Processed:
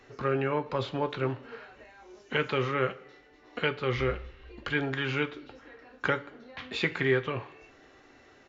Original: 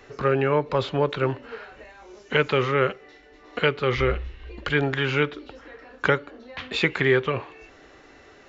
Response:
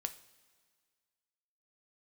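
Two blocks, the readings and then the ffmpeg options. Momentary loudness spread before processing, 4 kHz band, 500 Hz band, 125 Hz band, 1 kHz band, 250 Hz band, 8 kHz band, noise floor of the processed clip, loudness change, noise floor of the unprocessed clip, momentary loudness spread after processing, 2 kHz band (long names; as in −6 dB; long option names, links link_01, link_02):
18 LU, −6.5 dB, −7.5 dB, −6.5 dB, −6.0 dB, −5.5 dB, can't be measured, −58 dBFS, −6.5 dB, −52 dBFS, 19 LU, −6.0 dB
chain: -filter_complex "[0:a]aresample=16000,aresample=44100[link_01];[1:a]atrim=start_sample=2205,asetrate=79380,aresample=44100[link_02];[link_01][link_02]afir=irnorm=-1:irlink=0"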